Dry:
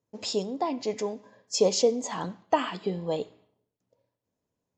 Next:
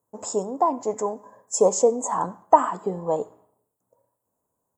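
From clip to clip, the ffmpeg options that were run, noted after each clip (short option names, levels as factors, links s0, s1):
-af "firequalizer=gain_entry='entry(200,0);entry(980,12);entry(2400,-15);entry(4400,-17);entry(7800,14)':delay=0.05:min_phase=1"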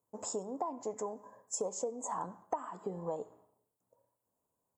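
-af "acompressor=threshold=0.0398:ratio=5,volume=0.473"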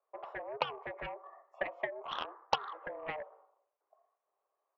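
-af "highpass=f=290:t=q:w=0.5412,highpass=f=290:t=q:w=1.307,lowpass=f=2500:t=q:w=0.5176,lowpass=f=2500:t=q:w=0.7071,lowpass=f=2500:t=q:w=1.932,afreqshift=140,aeval=exprs='0.106*(cos(1*acos(clip(val(0)/0.106,-1,1)))-cos(1*PI/2))+0.0266*(cos(7*acos(clip(val(0)/0.106,-1,1)))-cos(7*PI/2))':c=same,volume=1.78"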